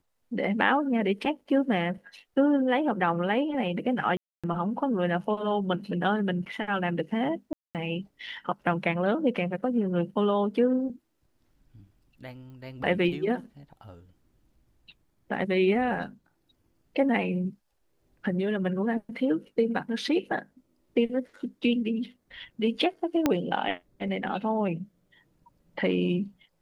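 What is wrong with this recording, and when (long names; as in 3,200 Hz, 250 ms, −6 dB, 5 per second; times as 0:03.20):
0:04.17–0:04.44: drop-out 266 ms
0:07.53–0:07.75: drop-out 218 ms
0:12.50: click −40 dBFS
0:23.26: click −9 dBFS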